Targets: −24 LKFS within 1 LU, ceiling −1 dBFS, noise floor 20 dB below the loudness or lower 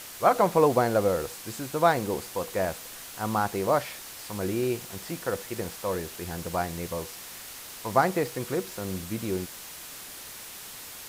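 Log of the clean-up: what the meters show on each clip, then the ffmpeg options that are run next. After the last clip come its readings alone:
background noise floor −43 dBFS; target noise floor −49 dBFS; integrated loudness −28.5 LKFS; sample peak −8.0 dBFS; target loudness −24.0 LKFS
→ -af "afftdn=noise_reduction=6:noise_floor=-43"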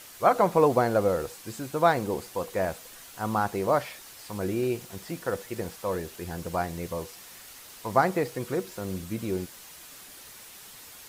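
background noise floor −48 dBFS; integrated loudness −28.0 LKFS; sample peak −8.0 dBFS; target loudness −24.0 LKFS
→ -af "volume=4dB"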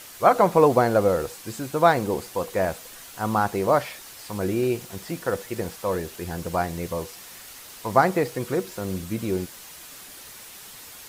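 integrated loudness −24.0 LKFS; sample peak −4.0 dBFS; background noise floor −44 dBFS

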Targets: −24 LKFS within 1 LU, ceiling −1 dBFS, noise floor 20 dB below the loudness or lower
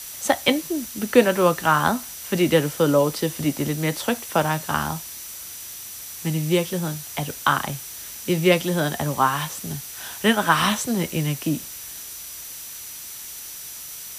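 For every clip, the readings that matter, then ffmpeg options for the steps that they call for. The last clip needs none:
interfering tone 5,900 Hz; level of the tone −43 dBFS; background noise floor −37 dBFS; target noise floor −43 dBFS; integrated loudness −23.0 LKFS; sample peak −2.0 dBFS; target loudness −24.0 LKFS
→ -af "bandreject=frequency=5900:width=30"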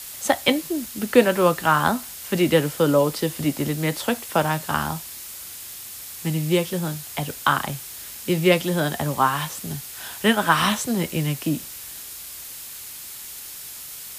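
interfering tone none found; background noise floor −38 dBFS; target noise floor −43 dBFS
→ -af "afftdn=noise_reduction=6:noise_floor=-38"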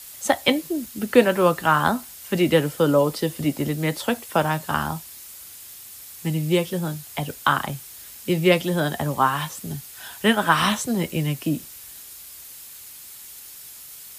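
background noise floor −42 dBFS; target noise floor −43 dBFS
→ -af "afftdn=noise_reduction=6:noise_floor=-42"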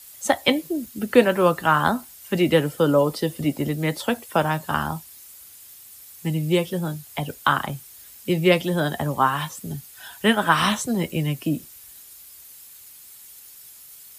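background noise floor −46 dBFS; integrated loudness −22.5 LKFS; sample peak −2.0 dBFS; target loudness −24.0 LKFS
→ -af "volume=-1.5dB"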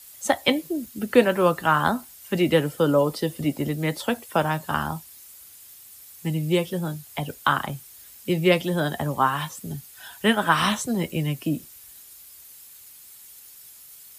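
integrated loudness −24.0 LKFS; sample peak −3.5 dBFS; background noise floor −47 dBFS

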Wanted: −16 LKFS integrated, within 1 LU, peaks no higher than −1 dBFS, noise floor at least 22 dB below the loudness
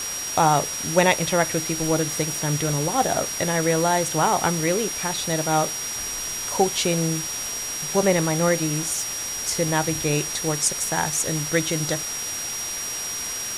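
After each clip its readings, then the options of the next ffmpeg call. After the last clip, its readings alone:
interfering tone 5,700 Hz; level of the tone −29 dBFS; background noise floor −30 dBFS; target noise floor −45 dBFS; integrated loudness −22.5 LKFS; sample peak −4.0 dBFS; target loudness −16.0 LKFS
→ -af "bandreject=frequency=5700:width=30"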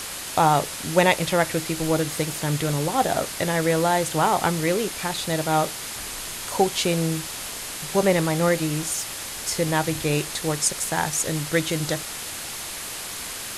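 interfering tone none found; background noise floor −34 dBFS; target noise floor −46 dBFS
→ -af "afftdn=noise_reduction=12:noise_floor=-34"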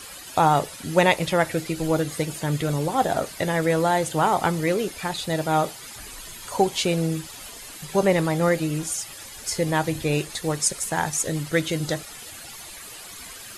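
background noise floor −41 dBFS; target noise floor −46 dBFS
→ -af "afftdn=noise_reduction=6:noise_floor=-41"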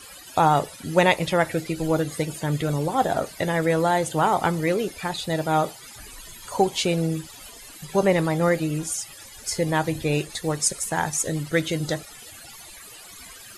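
background noise floor −44 dBFS; target noise floor −46 dBFS
→ -af "afftdn=noise_reduction=6:noise_floor=-44"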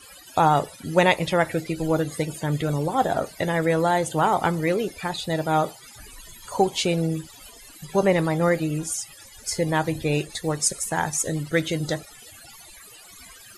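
background noise floor −47 dBFS; integrated loudness −24.0 LKFS; sample peak −4.5 dBFS; target loudness −16.0 LKFS
→ -af "volume=8dB,alimiter=limit=-1dB:level=0:latency=1"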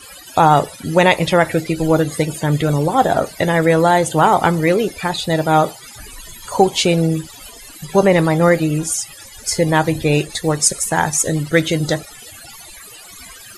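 integrated loudness −16.5 LKFS; sample peak −1.0 dBFS; background noise floor −39 dBFS

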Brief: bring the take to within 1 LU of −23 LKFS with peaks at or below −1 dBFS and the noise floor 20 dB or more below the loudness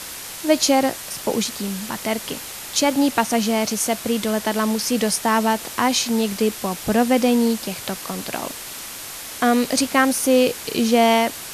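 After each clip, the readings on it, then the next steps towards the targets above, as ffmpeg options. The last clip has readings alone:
background noise floor −34 dBFS; target noise floor −41 dBFS; integrated loudness −20.5 LKFS; sample peak −3.5 dBFS; target loudness −23.0 LKFS
→ -af "afftdn=noise_reduction=7:noise_floor=-34"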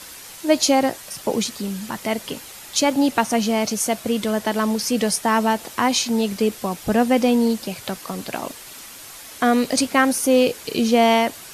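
background noise floor −40 dBFS; target noise floor −41 dBFS
→ -af "afftdn=noise_reduction=6:noise_floor=-40"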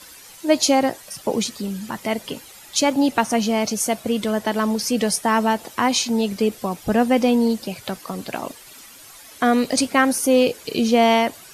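background noise floor −44 dBFS; integrated loudness −20.5 LKFS; sample peak −3.5 dBFS; target loudness −23.0 LKFS
→ -af "volume=-2.5dB"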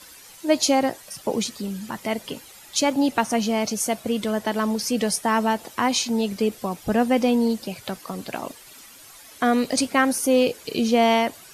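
integrated loudness −23.0 LKFS; sample peak −6.0 dBFS; background noise floor −46 dBFS

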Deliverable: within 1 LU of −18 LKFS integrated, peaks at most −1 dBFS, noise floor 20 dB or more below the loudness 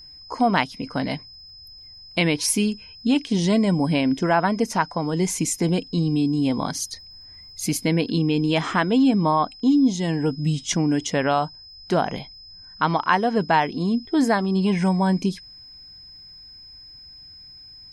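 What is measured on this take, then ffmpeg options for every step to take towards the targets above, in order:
interfering tone 5,100 Hz; level of the tone −42 dBFS; integrated loudness −22.0 LKFS; sample peak −4.0 dBFS; target loudness −18.0 LKFS
→ -af "bandreject=frequency=5100:width=30"
-af "volume=4dB,alimiter=limit=-1dB:level=0:latency=1"

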